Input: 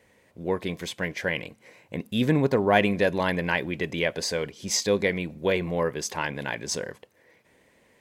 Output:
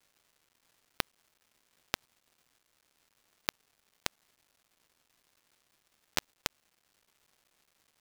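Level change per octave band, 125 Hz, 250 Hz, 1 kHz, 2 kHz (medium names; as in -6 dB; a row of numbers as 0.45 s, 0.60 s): -26.5 dB, -28.0 dB, -17.5 dB, -17.0 dB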